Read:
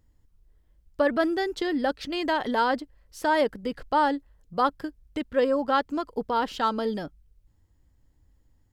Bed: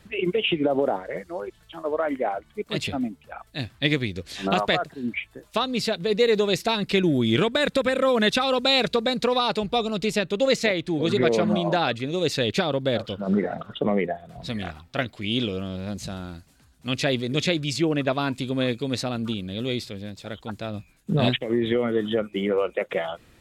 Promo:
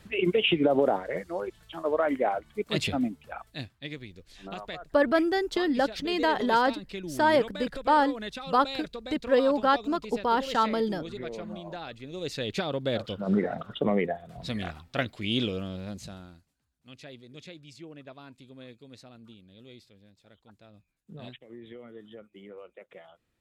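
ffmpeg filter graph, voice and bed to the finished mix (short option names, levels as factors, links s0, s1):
-filter_complex "[0:a]adelay=3950,volume=1.06[s0];[1:a]volume=4.73,afade=t=out:st=3.35:d=0.4:silence=0.158489,afade=t=in:st=11.9:d=1.42:silence=0.199526,afade=t=out:st=15.46:d=1.09:silence=0.1[s1];[s0][s1]amix=inputs=2:normalize=0"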